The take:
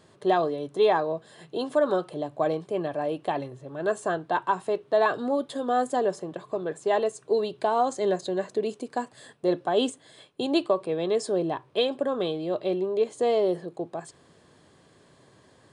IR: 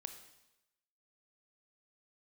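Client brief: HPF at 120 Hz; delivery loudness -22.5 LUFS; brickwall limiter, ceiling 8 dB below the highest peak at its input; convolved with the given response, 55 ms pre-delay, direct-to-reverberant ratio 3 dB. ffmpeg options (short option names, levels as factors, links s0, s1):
-filter_complex "[0:a]highpass=120,alimiter=limit=0.106:level=0:latency=1,asplit=2[s0][s1];[1:a]atrim=start_sample=2205,adelay=55[s2];[s1][s2]afir=irnorm=-1:irlink=0,volume=1.12[s3];[s0][s3]amix=inputs=2:normalize=0,volume=2"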